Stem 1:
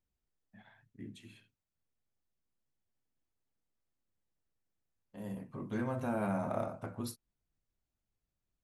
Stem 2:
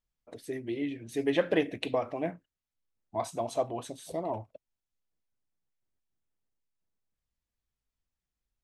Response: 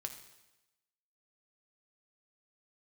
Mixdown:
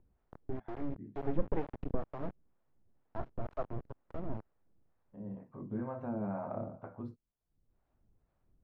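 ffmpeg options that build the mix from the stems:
-filter_complex "[0:a]acompressor=mode=upward:threshold=-52dB:ratio=2.5,volume=0.5dB[a];[1:a]acrusher=bits=3:dc=4:mix=0:aa=0.000001,lowshelf=f=300:g=10.5,volume=-3.5dB[b];[a][b]amix=inputs=2:normalize=0,lowpass=1.1k,acrossover=split=480[c][d];[c]aeval=exprs='val(0)*(1-0.7/2+0.7/2*cos(2*PI*2.1*n/s))':c=same[e];[d]aeval=exprs='val(0)*(1-0.7/2-0.7/2*cos(2*PI*2.1*n/s))':c=same[f];[e][f]amix=inputs=2:normalize=0"

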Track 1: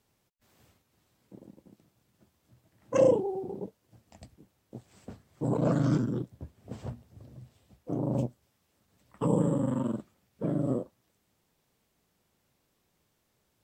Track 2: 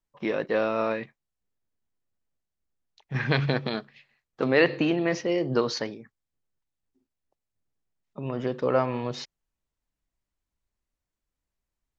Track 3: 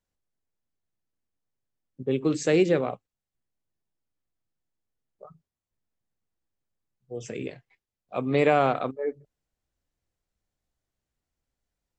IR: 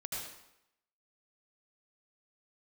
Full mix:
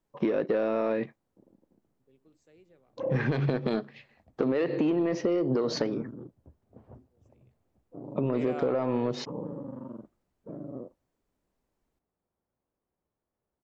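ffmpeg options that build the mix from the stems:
-filter_complex "[0:a]lowpass=1.1k,equalizer=f=140:t=o:w=1.4:g=-6,adelay=50,volume=-8.5dB[a];[1:a]equalizer=f=340:w=0.39:g=12.5,alimiter=limit=-9dB:level=0:latency=1:release=133,asoftclip=type=tanh:threshold=-10dB,volume=0.5dB,asplit=2[b][c];[2:a]volume=-11dB[d];[c]apad=whole_len=528648[e];[d][e]sidechaingate=range=-28dB:threshold=-42dB:ratio=16:detection=peak[f];[a][b][f]amix=inputs=3:normalize=0,acompressor=threshold=-24dB:ratio=6"

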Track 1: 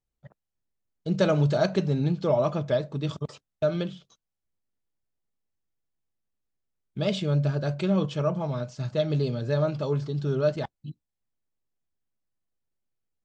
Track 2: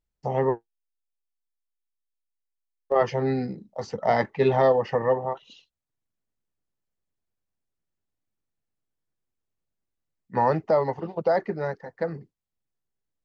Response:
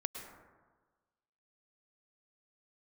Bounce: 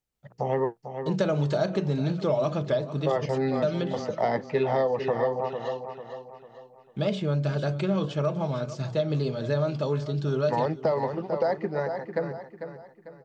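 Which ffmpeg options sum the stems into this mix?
-filter_complex "[0:a]bandreject=f=60:t=h:w=6,bandreject=f=120:t=h:w=6,bandreject=f=180:t=h:w=6,bandreject=f=240:t=h:w=6,bandreject=f=300:t=h:w=6,bandreject=f=360:t=h:w=6,bandreject=f=420:t=h:w=6,bandreject=f=480:t=h:w=6,volume=3dB,asplit=2[a][b];[b]volume=-17.5dB[c];[1:a]adelay=150,volume=1dB,asplit=2[d][e];[e]volume=-10.5dB[f];[c][f]amix=inputs=2:normalize=0,aecho=0:1:447|894|1341|1788|2235:1|0.39|0.152|0.0593|0.0231[g];[a][d][g]amix=inputs=3:normalize=0,lowshelf=f=61:g=-11,acrossover=split=760|2100[h][i][j];[h]acompressor=threshold=-23dB:ratio=4[k];[i]acompressor=threshold=-35dB:ratio=4[l];[j]acompressor=threshold=-43dB:ratio=4[m];[k][l][m]amix=inputs=3:normalize=0"

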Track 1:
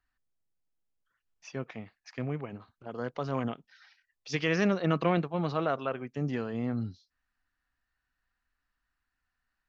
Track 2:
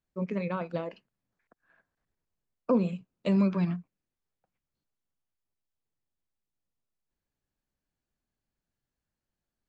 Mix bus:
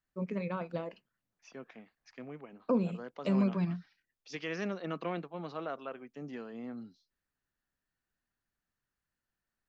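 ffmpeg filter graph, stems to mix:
-filter_complex "[0:a]highpass=f=180:w=0.5412,highpass=f=180:w=1.3066,volume=-9dB[a];[1:a]volume=-4dB[b];[a][b]amix=inputs=2:normalize=0"

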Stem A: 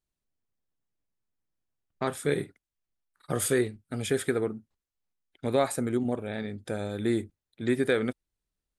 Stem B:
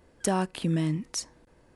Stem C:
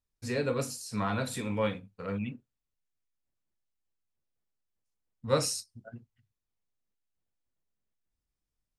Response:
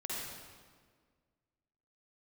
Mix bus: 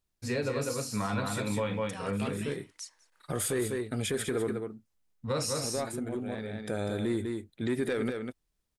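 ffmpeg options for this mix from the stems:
-filter_complex "[0:a]asoftclip=type=tanh:threshold=-16dB,volume=2dB,asplit=2[a][b];[b]volume=-9.5dB[c];[1:a]highpass=1.4k,alimiter=level_in=3.5dB:limit=-24dB:level=0:latency=1:release=91,volume=-3.5dB,adelay=1650,volume=-4dB,asplit=2[d][e];[e]volume=-24dB[f];[2:a]volume=1.5dB,asplit=3[g][h][i];[h]volume=-4.5dB[j];[i]apad=whole_len=387229[k];[a][k]sidechaincompress=threshold=-42dB:ratio=8:attack=5.2:release=881[l];[c][f][j]amix=inputs=3:normalize=0,aecho=0:1:198:1[m];[l][d][g][m]amix=inputs=4:normalize=0,alimiter=limit=-22dB:level=0:latency=1:release=76"

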